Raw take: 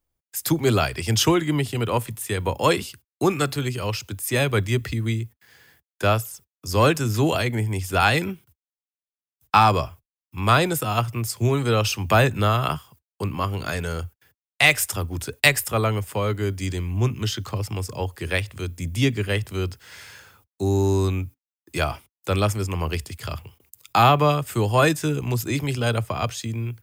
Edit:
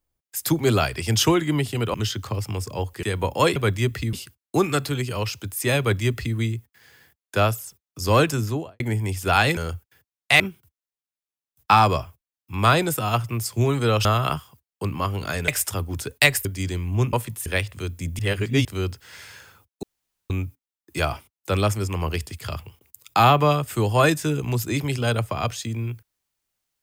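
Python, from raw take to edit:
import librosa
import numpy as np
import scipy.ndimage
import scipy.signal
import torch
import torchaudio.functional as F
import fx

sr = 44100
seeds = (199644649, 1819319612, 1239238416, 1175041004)

y = fx.studio_fade_out(x, sr, start_s=6.98, length_s=0.49)
y = fx.edit(y, sr, fx.swap(start_s=1.94, length_s=0.33, other_s=17.16, other_length_s=1.09),
    fx.duplicate(start_s=4.46, length_s=0.57, to_s=2.8),
    fx.cut(start_s=11.89, length_s=0.55),
    fx.move(start_s=13.87, length_s=0.83, to_s=8.24),
    fx.cut(start_s=15.67, length_s=0.81),
    fx.reverse_span(start_s=18.98, length_s=0.46),
    fx.room_tone_fill(start_s=20.62, length_s=0.47), tone=tone)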